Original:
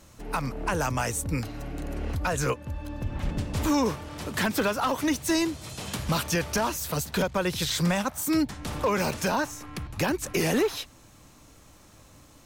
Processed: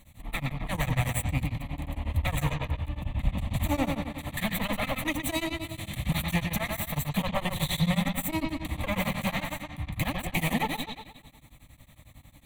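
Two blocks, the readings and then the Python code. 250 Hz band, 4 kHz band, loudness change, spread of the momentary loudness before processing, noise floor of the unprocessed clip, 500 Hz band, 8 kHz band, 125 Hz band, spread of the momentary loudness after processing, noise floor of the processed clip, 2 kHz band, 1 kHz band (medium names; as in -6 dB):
-3.0 dB, -2.0 dB, -2.5 dB, 10 LU, -54 dBFS, -7.5 dB, -7.0 dB, +2.0 dB, 7 LU, -55 dBFS, -1.5 dB, -4.0 dB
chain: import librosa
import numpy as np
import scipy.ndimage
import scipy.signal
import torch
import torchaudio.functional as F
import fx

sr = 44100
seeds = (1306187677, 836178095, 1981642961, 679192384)

p1 = fx.lower_of_two(x, sr, delay_ms=0.53)
p2 = fx.fixed_phaser(p1, sr, hz=1500.0, stages=6)
p3 = p2 + fx.echo_bbd(p2, sr, ms=119, stages=4096, feedback_pct=50, wet_db=-4, dry=0)
p4 = p3 * np.abs(np.cos(np.pi * 11.0 * np.arange(len(p3)) / sr))
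y = F.gain(torch.from_numpy(p4), 4.5).numpy()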